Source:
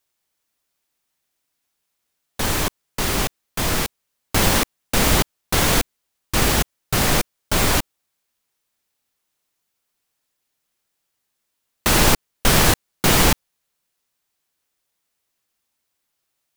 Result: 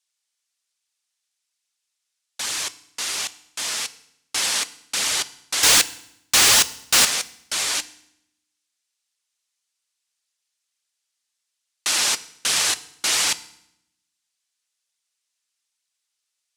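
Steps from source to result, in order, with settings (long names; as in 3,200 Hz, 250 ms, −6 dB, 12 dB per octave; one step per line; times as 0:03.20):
meter weighting curve ITU-R 468
0:05.63–0:07.05: leveller curve on the samples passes 5
flanger 1.2 Hz, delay 0.2 ms, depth 4.9 ms, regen −44%
feedback delay network reverb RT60 0.75 s, low-frequency decay 1.4×, high-frequency decay 0.95×, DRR 14 dB
level −6.5 dB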